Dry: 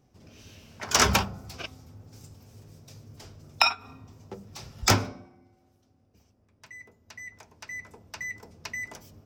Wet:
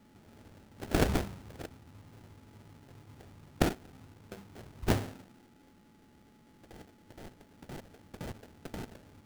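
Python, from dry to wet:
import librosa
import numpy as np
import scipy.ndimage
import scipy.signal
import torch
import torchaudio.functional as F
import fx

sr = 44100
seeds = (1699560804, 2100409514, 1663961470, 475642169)

y = x + 10.0 ** (-52.0 / 20.0) * np.sin(2.0 * np.pi * 850.0 * np.arange(len(x)) / sr)
y = fx.sample_hold(y, sr, seeds[0], rate_hz=1100.0, jitter_pct=20)
y = y * librosa.db_to_amplitude(-6.0)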